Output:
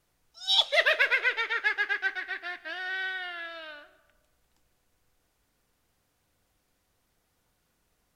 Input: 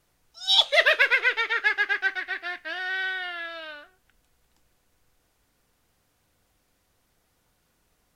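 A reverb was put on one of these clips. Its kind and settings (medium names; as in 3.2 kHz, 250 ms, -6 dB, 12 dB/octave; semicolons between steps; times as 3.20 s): algorithmic reverb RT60 1.3 s, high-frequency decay 0.4×, pre-delay 105 ms, DRR 18 dB; trim -4 dB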